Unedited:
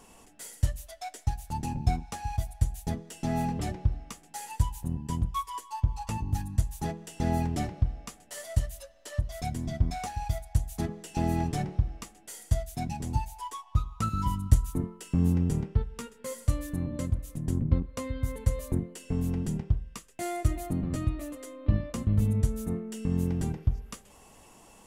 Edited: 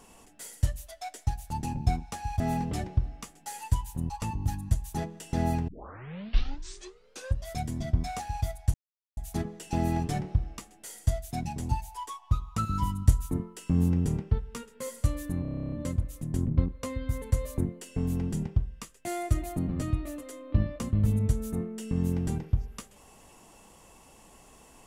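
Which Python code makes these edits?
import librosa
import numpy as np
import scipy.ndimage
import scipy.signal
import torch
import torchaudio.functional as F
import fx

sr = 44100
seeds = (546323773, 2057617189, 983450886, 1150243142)

y = fx.edit(x, sr, fx.cut(start_s=2.4, length_s=0.88),
    fx.cut(start_s=4.98, length_s=0.99),
    fx.tape_start(start_s=7.55, length_s=1.79),
    fx.insert_silence(at_s=10.61, length_s=0.43),
    fx.stutter(start_s=16.86, slice_s=0.03, count=11), tone=tone)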